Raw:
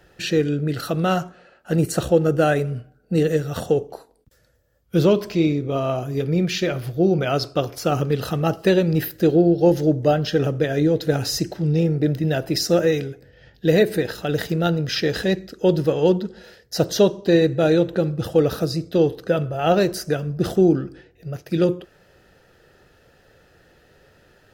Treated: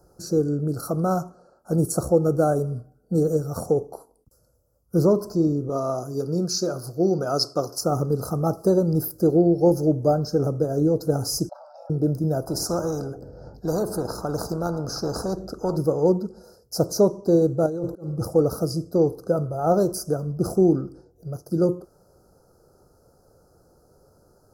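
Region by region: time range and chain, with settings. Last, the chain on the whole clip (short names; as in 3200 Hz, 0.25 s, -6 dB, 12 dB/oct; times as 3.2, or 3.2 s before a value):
5.69–7.81 weighting filter D + mismatched tape noise reduction decoder only
11.49–11.9 brick-wall FIR high-pass 540 Hz + air absorption 350 m + fast leveller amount 50%
12.47–15.77 LPF 1700 Hz 6 dB/oct + spectral compressor 2:1
17.66–18.25 negative-ratio compressor -23 dBFS + auto swell 0.279 s
whole clip: inverse Chebyshev band-stop 1800–3600 Hz, stop band 40 dB; bell 11000 Hz +10 dB 0.28 oct; gain -2 dB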